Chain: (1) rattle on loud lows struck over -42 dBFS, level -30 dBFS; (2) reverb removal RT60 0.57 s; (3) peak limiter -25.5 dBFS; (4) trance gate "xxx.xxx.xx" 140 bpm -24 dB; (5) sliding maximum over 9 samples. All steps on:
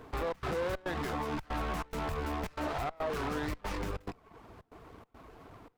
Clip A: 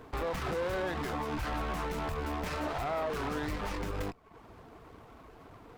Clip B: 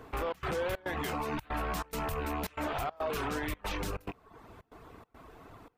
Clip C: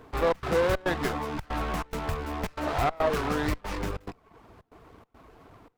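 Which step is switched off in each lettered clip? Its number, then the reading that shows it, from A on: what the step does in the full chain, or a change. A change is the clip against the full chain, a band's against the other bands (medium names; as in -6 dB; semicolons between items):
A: 4, loudness change +1.0 LU; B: 5, distortion -8 dB; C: 3, mean gain reduction 3.5 dB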